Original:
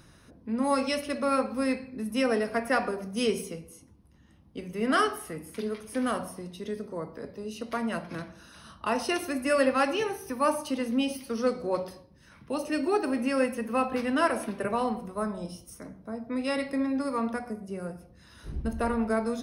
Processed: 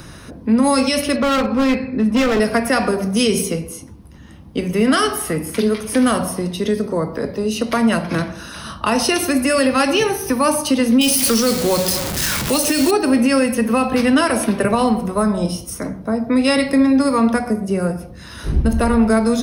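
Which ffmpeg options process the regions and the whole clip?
ffmpeg -i in.wav -filter_complex "[0:a]asettb=1/sr,asplit=3[link_01][link_02][link_03];[link_01]atrim=end=1.164[link_04];[link_02]atrim=start=1.16:end=2.4,asetpts=PTS-STARTPTS,afade=type=in:duration=0.004:curve=qsin,afade=type=out:start_time=1.236:duration=0.004:curve=qsin,lowpass=3500,volume=27.5dB,asoftclip=hard,volume=-27.5dB[link_05];[link_03]atrim=start=2.396[link_06];[link_04][link_05]acrossfade=duration=0.004:curve1=hsin:curve2=qsin[link_07];[link_07][link_06]acrossfade=duration=0.004:curve1=qsin:curve2=hsin,asettb=1/sr,asplit=3[link_08][link_09][link_10];[link_08]atrim=end=11.014[link_11];[link_09]atrim=start=11.01:end=12.91,asetpts=PTS-STARTPTS,afade=type=in:duration=0.004:curve=qsin,afade=type=out:start_time=1.896:duration=0.004:curve=qsin,aeval=exprs='val(0)+0.5*0.0119*sgn(val(0))':channel_layout=same,highshelf=frequency=3200:gain=11.5,acrusher=bits=4:mode=log:mix=0:aa=0.000001[link_12];[link_10]atrim=start=12.906[link_13];[link_11][link_12]acrossfade=duration=0.004:curve1=hsin:curve2=qsin[link_14];[link_14][link_13]acrossfade=duration=0.004:curve1=qsin:curve2=hsin,acrossover=split=230|3000[link_15][link_16][link_17];[link_16]acompressor=threshold=-38dB:ratio=2[link_18];[link_15][link_18][link_17]amix=inputs=3:normalize=0,alimiter=level_in=23.5dB:limit=-1dB:release=50:level=0:latency=1,volume=-5.5dB" out.wav

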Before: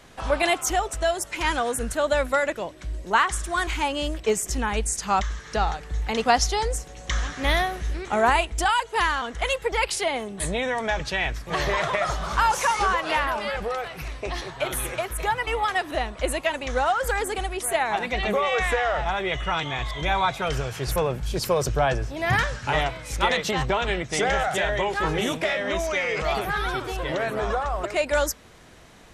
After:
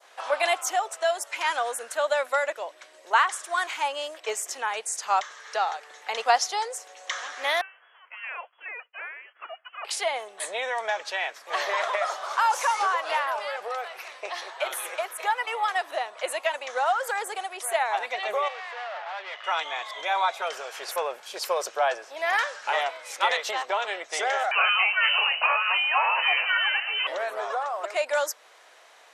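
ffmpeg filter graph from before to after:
ffmpeg -i in.wav -filter_complex "[0:a]asettb=1/sr,asplit=3[link_01][link_02][link_03];[link_01]atrim=end=7.614[link_04];[link_02]atrim=start=7.61:end=9.85,asetpts=PTS-STARTPTS,afade=type=in:duration=0.004:curve=qsin,afade=type=out:start_time=2.236:duration=0.004:curve=qsin,agate=range=-33dB:threshold=-33dB:ratio=3:release=100:detection=peak,aderivative,lowpass=frequency=2900:width_type=q:width=0.5098,lowpass=frequency=2900:width_type=q:width=0.6013,lowpass=frequency=2900:width_type=q:width=0.9,lowpass=frequency=2900:width_type=q:width=2.563,afreqshift=-3400[link_05];[link_03]atrim=start=9.846[link_06];[link_04][link_05]acrossfade=duration=0.004:curve1=hsin:curve2=qsin[link_07];[link_07][link_06]acrossfade=duration=0.004:curve1=qsin:curve2=hsin,asettb=1/sr,asplit=3[link_08][link_09][link_10];[link_08]atrim=end=18.484[link_11];[link_09]atrim=start=18.48:end=19.44,asetpts=PTS-STARTPTS,afade=type=in:duration=0.004:curve=qsin,afade=type=out:start_time=0.956:duration=0.004:curve=qsin,asoftclip=type=hard:threshold=-30.5dB,highpass=540,lowpass=3300[link_12];[link_10]atrim=start=19.436[link_13];[link_11][link_12]acrossfade=duration=0.004:curve1=hsin:curve2=qsin[link_14];[link_14][link_13]acrossfade=duration=0.004:curve1=qsin:curve2=hsin,asettb=1/sr,asplit=3[link_15][link_16][link_17];[link_15]atrim=end=24.514[link_18];[link_16]atrim=start=24.51:end=27.07,asetpts=PTS-STARTPTS,afade=type=in:duration=0.004:curve=qsin,afade=type=out:start_time=2.556:duration=0.004:curve=qsin,acontrast=51,lowpass=frequency=2600:width_type=q:width=0.5098,lowpass=frequency=2600:width_type=q:width=0.6013,lowpass=frequency=2600:width_type=q:width=0.9,lowpass=frequency=2600:width_type=q:width=2.563,afreqshift=-3100[link_19];[link_17]atrim=start=27.066[link_20];[link_18][link_19]acrossfade=duration=0.004:curve1=hsin:curve2=qsin[link_21];[link_21][link_20]acrossfade=duration=0.004:curve1=qsin:curve2=hsin,adynamicequalizer=threshold=0.0158:dfrequency=2400:dqfactor=0.72:tfrequency=2400:tqfactor=0.72:attack=5:release=100:ratio=0.375:range=2:mode=cutabove:tftype=bell,highpass=frequency=560:width=0.5412,highpass=frequency=560:width=1.3066,highshelf=frequency=6400:gain=-5" out.wav

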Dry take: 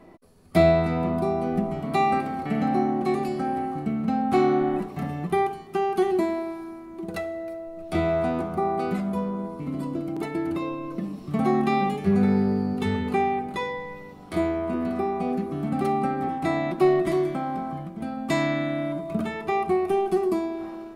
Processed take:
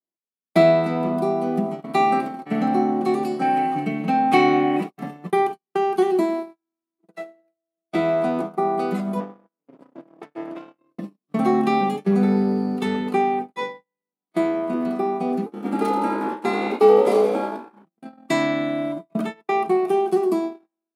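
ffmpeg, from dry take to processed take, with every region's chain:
ffmpeg -i in.wav -filter_complex "[0:a]asettb=1/sr,asplit=3[link_01][link_02][link_03];[link_01]atrim=end=3.414[link_04];[link_02]atrim=start=3.41:end=4.9,asetpts=PTS-STARTPTS,afade=type=in:duration=0.004:curve=qsin,afade=type=out:start_time=1.486:duration=0.004:curve=qsin,equalizer=frequency=2400:width_type=o:width=0.85:gain=11,aecho=1:1:6.4:0.85,atrim=end_sample=65709[link_05];[link_03]atrim=start=4.896[link_06];[link_04][link_05]acrossfade=duration=0.004:curve1=hsin:curve2=qsin[link_07];[link_07][link_06]acrossfade=duration=0.004:curve1=qsin:curve2=hsin,asettb=1/sr,asplit=3[link_08][link_09][link_10];[link_08]atrim=end=9.204[link_11];[link_09]atrim=start=9.2:end=10.79,asetpts=PTS-STARTPTS,afade=type=in:duration=0.004:curve=qsin,afade=type=out:start_time=1.586:duration=0.004:curve=qsin,aeval=exprs='max(val(0),0)':channel_layout=same,aemphasis=mode=reproduction:type=50kf,bandreject=frequency=4100:width=13[link_12];[link_10]atrim=start=10.786[link_13];[link_11][link_12]acrossfade=duration=0.004:curve1=hsin:curve2=qsin[link_14];[link_14][link_13]acrossfade=duration=0.004:curve1=qsin:curve2=hsin,asettb=1/sr,asplit=3[link_15][link_16][link_17];[link_15]atrim=end=15.464[link_18];[link_16]atrim=start=15.46:end=17.85,asetpts=PTS-STARTPTS,afade=type=in:duration=0.004:curve=qsin,afade=type=out:start_time=2.386:duration=0.004:curve=qsin,afreqshift=58,asplit=2[link_19][link_20];[link_20]adelay=30,volume=-6.5dB[link_21];[link_19][link_21]amix=inputs=2:normalize=0,atrim=end_sample=105399,asplit=9[link_22][link_23][link_24][link_25][link_26][link_27][link_28][link_29][link_30];[link_23]adelay=83,afreqshift=58,volume=-8.5dB[link_31];[link_24]adelay=166,afreqshift=116,volume=-12.8dB[link_32];[link_25]adelay=249,afreqshift=174,volume=-17.1dB[link_33];[link_26]adelay=332,afreqshift=232,volume=-21.4dB[link_34];[link_27]adelay=415,afreqshift=290,volume=-25.7dB[link_35];[link_28]adelay=498,afreqshift=348,volume=-30dB[link_36];[link_29]adelay=581,afreqshift=406,volume=-34.3dB[link_37];[link_30]adelay=664,afreqshift=464,volume=-38.6dB[link_38];[link_22][link_31][link_32][link_33][link_34][link_35][link_36][link_37][link_38]amix=inputs=9:normalize=0,atrim=end_sample=105399[link_39];[link_17]atrim=start=17.846[link_40];[link_18][link_39]acrossfade=duration=0.004:curve1=hsin:curve2=qsin[link_41];[link_41][link_40]acrossfade=duration=0.004:curve1=qsin:curve2=hsin,agate=range=-52dB:threshold=-28dB:ratio=16:detection=peak,highpass=frequency=180:width=0.5412,highpass=frequency=180:width=1.3066,adynamicequalizer=threshold=0.00562:dfrequency=1900:dqfactor=1.6:tfrequency=1900:tqfactor=1.6:attack=5:release=100:ratio=0.375:range=2.5:mode=cutabove:tftype=bell,volume=3.5dB" out.wav

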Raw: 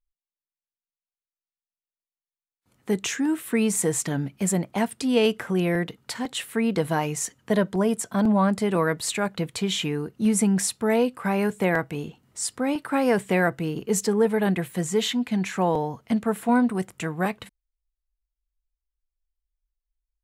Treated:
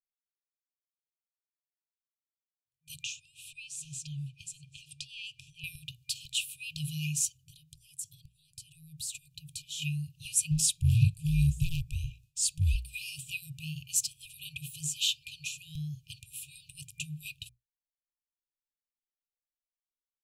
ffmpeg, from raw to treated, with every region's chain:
ffmpeg -i in.wav -filter_complex "[0:a]asettb=1/sr,asplit=3[link_01][link_02][link_03];[link_01]atrim=end=3.034[link_04];[link_02]atrim=start=3.03:end=5.64,asetpts=PTS-STARTPTS,afade=type=in:duration=0.004:curve=qsin,afade=type=out:start_time=2.606:duration=0.004:curve=qsin,acompressor=threshold=-34dB:ratio=2.5:attack=3.2:release=140:knee=1:detection=peak,lowpass=6300,aecho=1:1:790:0.0841,atrim=end_sample=115101[link_05];[link_03]atrim=start=5.636[link_06];[link_04][link_05]acrossfade=duration=0.004:curve1=hsin:curve2=qsin[link_07];[link_07][link_06]acrossfade=duration=0.004:curve1=qsin:curve2=hsin,asettb=1/sr,asplit=3[link_08][link_09][link_10];[link_08]atrim=end=7.374[link_11];[link_09]atrim=start=7.37:end=9.82,asetpts=PTS-STARTPTS,afade=type=in:duration=0.004:curve=qsin,afade=type=out:start_time=2.446:duration=0.004:curve=qsin,equalizer=frequency=1800:width=0.66:gain=-12.5,acompressor=threshold=-36dB:ratio=2.5:attack=3.2:release=140:knee=1:detection=peak[link_12];[link_10]atrim=start=9.816[link_13];[link_11][link_12]acrossfade=duration=0.004:curve1=hsin:curve2=qsin[link_14];[link_14][link_13]acrossfade=duration=0.004:curve1=qsin:curve2=hsin,asettb=1/sr,asplit=3[link_15][link_16][link_17];[link_15]atrim=end=10.514[link_18];[link_16]atrim=start=10.51:end=12.76,asetpts=PTS-STARTPTS,afade=type=in:duration=0.004:curve=qsin,afade=type=out:start_time=2.246:duration=0.004:curve=qsin,lowshelf=frequency=240:gain=4,afreqshift=-350,volume=17dB,asoftclip=hard,volume=-17dB[link_19];[link_17]atrim=start=12.756[link_20];[link_18][link_19]acrossfade=duration=0.004:curve1=hsin:curve2=qsin[link_21];[link_21][link_20]acrossfade=duration=0.004:curve1=qsin:curve2=hsin,bandreject=frequency=60:width_type=h:width=6,bandreject=frequency=120:width_type=h:width=6,agate=range=-33dB:threshold=-48dB:ratio=3:detection=peak,afftfilt=real='re*(1-between(b*sr/4096,160,2400))':imag='im*(1-between(b*sr/4096,160,2400))':win_size=4096:overlap=0.75" out.wav

